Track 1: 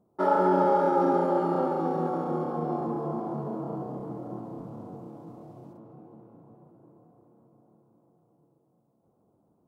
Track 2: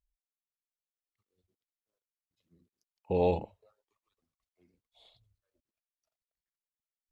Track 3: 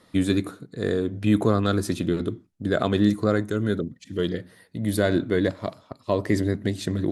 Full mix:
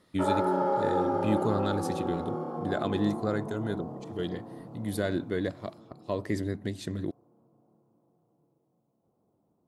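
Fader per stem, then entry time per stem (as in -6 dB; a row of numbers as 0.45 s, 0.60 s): -4.5 dB, mute, -8.0 dB; 0.00 s, mute, 0.00 s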